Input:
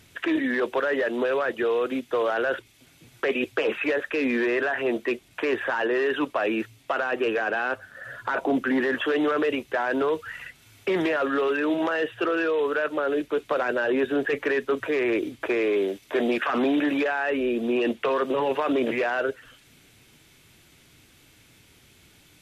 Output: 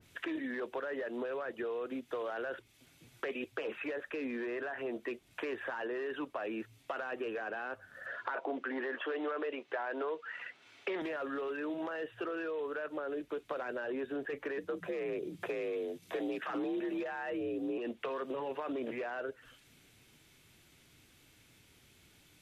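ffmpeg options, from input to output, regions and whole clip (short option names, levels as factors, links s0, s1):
-filter_complex "[0:a]asettb=1/sr,asplit=3[s0][s1][s2];[s0]atrim=end=8.064[s3];[s1]atrim=start=8.06:end=11.02,asetpts=PTS-STARTPTS,afade=t=in:d=0.004:c=qsin,afade=t=out:st=2.956:d=0.004:c=qsin,acontrast=62,highpass=390,lowpass=4000[s4];[s2]atrim=start=11.016[s5];[s3][s4]acrossfade=d=0.004:c1=hsin:c2=qsin[s6];[s6][s5]acrossfade=d=0.004:c1=qsin:c2=hsin,asettb=1/sr,asplit=3[s7][s8][s9];[s7]atrim=end=14.584[s10];[s8]atrim=start=14.58:end=17.78,asetpts=PTS-STARTPTS,afade=t=in:d=0.004:c=qsin,afade=t=out:st=3.196:d=0.004:c=qsin,bass=f=250:g=12,treble=f=4000:g=4,afreqshift=54[s11];[s9]atrim=start=17.776[s12];[s10][s11]acrossfade=d=0.004:c1=hsin:c2=qsin[s13];[s13][s12]acrossfade=d=0.004:c1=qsin:c2=hsin,acompressor=threshold=0.0355:ratio=3,adynamicequalizer=threshold=0.00631:dfrequency=1800:dqfactor=0.7:tfrequency=1800:tqfactor=0.7:attack=5:release=100:ratio=0.375:range=2.5:mode=cutabove:tftype=highshelf,volume=0.422"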